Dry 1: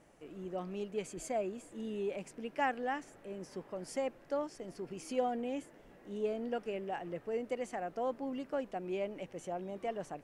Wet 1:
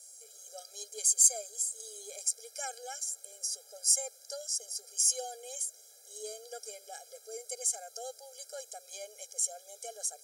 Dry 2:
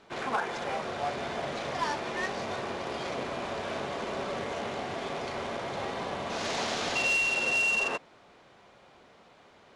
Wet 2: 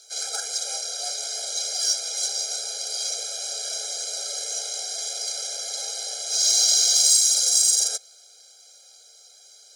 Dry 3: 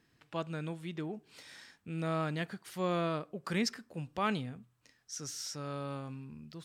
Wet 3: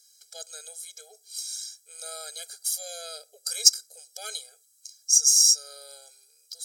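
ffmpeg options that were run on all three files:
-af "equalizer=f=6800:t=o:w=2.8:g=12.5,aexciter=amount=9.8:drive=8.6:freq=4100,afftfilt=real='re*eq(mod(floor(b*sr/1024/420),2),1)':imag='im*eq(mod(floor(b*sr/1024/420),2),1)':win_size=1024:overlap=0.75,volume=0.376"

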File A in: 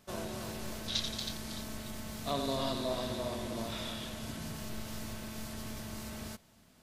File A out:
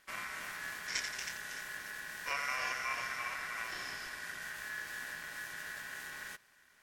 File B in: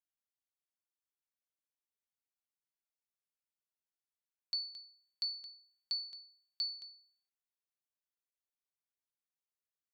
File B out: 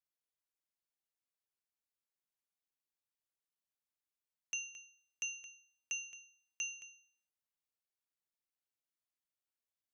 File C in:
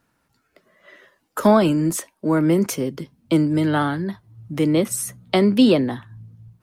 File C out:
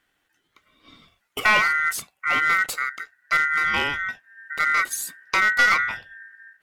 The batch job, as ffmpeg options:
-af "aeval=exprs='val(0)*sin(2*PI*1700*n/s)':c=same,aeval=exprs='clip(val(0),-1,0.188)':c=same"

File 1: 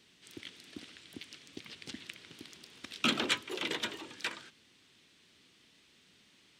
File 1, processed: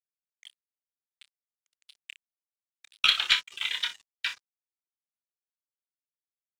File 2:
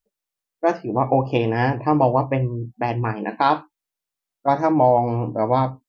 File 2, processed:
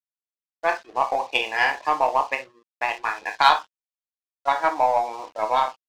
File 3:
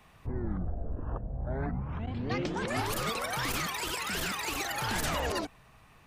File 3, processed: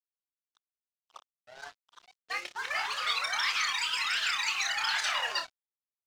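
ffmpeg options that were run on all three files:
-af "highpass=1200,aemphasis=mode=reproduction:type=50kf,acontrast=65,afftdn=nr=24:nf=-36,aecho=1:1:28|59:0.473|0.266,aeval=exprs='sgn(val(0))*max(abs(val(0))-0.00376,0)':c=same,equalizer=f=5500:w=0.63:g=12,aeval=exprs='0.891*(cos(1*acos(clip(val(0)/0.891,-1,1)))-cos(1*PI/2))+0.0282*(cos(7*acos(clip(val(0)/0.891,-1,1)))-cos(7*PI/2))+0.00708*(cos(8*acos(clip(val(0)/0.891,-1,1)))-cos(8*PI/2))':c=same"

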